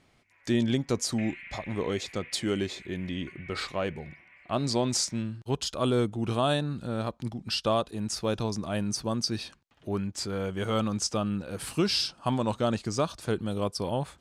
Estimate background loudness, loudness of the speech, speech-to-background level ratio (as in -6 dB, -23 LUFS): -47.0 LUFS, -30.0 LUFS, 17.0 dB